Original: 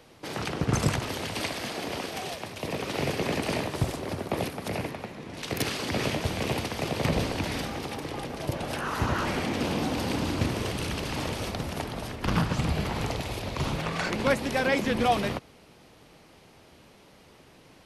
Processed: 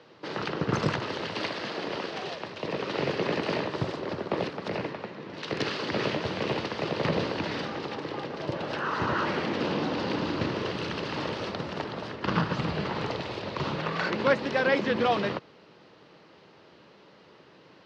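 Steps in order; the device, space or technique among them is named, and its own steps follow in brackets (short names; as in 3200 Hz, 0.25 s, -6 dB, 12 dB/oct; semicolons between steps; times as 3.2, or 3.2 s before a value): 9.72–10.72 LPF 8600 Hz; kitchen radio (speaker cabinet 180–4400 Hz, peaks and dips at 250 Hz -6 dB, 730 Hz -6 dB, 2300 Hz -6 dB, 3400 Hz -4 dB); gain +3 dB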